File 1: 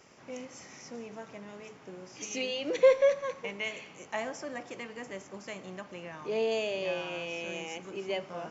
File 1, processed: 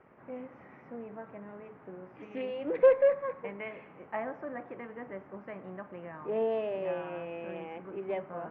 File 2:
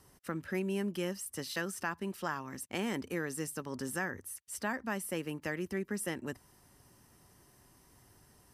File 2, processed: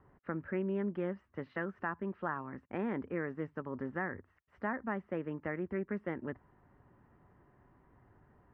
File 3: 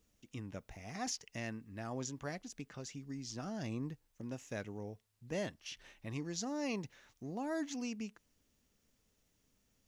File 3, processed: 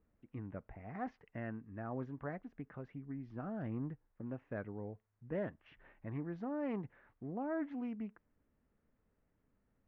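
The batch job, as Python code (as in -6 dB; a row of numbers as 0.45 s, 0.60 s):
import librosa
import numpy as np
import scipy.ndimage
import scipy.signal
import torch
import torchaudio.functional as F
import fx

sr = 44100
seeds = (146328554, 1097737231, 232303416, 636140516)

y = scipy.signal.sosfilt(scipy.signal.butter(4, 1800.0, 'lowpass', fs=sr, output='sos'), x)
y = fx.doppler_dist(y, sr, depth_ms=0.12)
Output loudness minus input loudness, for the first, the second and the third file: -0.5 LU, -1.5 LU, -1.0 LU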